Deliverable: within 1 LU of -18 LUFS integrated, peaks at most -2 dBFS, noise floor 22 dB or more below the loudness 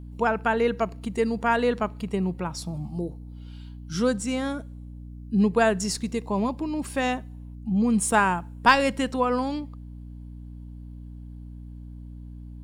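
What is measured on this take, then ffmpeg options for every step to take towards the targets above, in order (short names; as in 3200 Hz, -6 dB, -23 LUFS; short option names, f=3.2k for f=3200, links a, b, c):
hum 60 Hz; harmonics up to 300 Hz; hum level -37 dBFS; loudness -25.5 LUFS; peak -4.5 dBFS; loudness target -18.0 LUFS
-> -af "bandreject=f=60:t=h:w=4,bandreject=f=120:t=h:w=4,bandreject=f=180:t=h:w=4,bandreject=f=240:t=h:w=4,bandreject=f=300:t=h:w=4"
-af "volume=7.5dB,alimiter=limit=-2dB:level=0:latency=1"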